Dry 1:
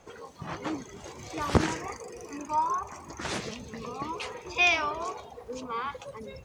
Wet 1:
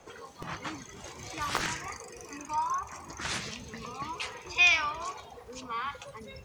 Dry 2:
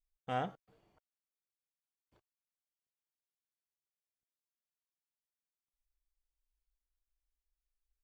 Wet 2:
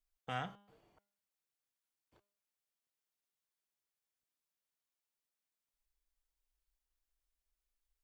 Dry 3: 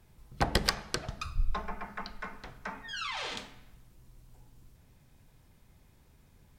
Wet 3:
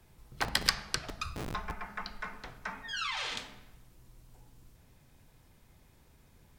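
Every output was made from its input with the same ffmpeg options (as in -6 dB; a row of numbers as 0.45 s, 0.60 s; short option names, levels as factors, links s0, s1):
-filter_complex "[0:a]bass=f=250:g=-3,treble=f=4000:g=0,bandreject=f=202.5:t=h:w=4,bandreject=f=405:t=h:w=4,bandreject=f=607.5:t=h:w=4,bandreject=f=810:t=h:w=4,bandreject=f=1012.5:t=h:w=4,bandreject=f=1215:t=h:w=4,bandreject=f=1417.5:t=h:w=4,bandreject=f=1620:t=h:w=4,bandreject=f=1822.5:t=h:w=4,bandreject=f=2025:t=h:w=4,bandreject=f=2227.5:t=h:w=4,bandreject=f=2430:t=h:w=4,bandreject=f=2632.5:t=h:w=4,bandreject=f=2835:t=h:w=4,bandreject=f=3037.5:t=h:w=4,bandreject=f=3240:t=h:w=4,bandreject=f=3442.5:t=h:w=4,bandreject=f=3645:t=h:w=4,bandreject=f=3847.5:t=h:w=4,bandreject=f=4050:t=h:w=4,bandreject=f=4252.5:t=h:w=4,bandreject=f=4455:t=h:w=4,bandreject=f=4657.5:t=h:w=4,bandreject=f=4860:t=h:w=4,bandreject=f=5062.5:t=h:w=4,bandreject=f=5265:t=h:w=4,bandreject=f=5467.5:t=h:w=4,bandreject=f=5670:t=h:w=4,acrossover=split=200|990[s0][s1][s2];[s0]aeval=exprs='(mod(56.2*val(0)+1,2)-1)/56.2':c=same[s3];[s1]acompressor=threshold=0.00316:ratio=6[s4];[s3][s4][s2]amix=inputs=3:normalize=0,volume=1.26"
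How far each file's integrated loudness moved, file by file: 0.0 LU, -4.0 LU, 0.0 LU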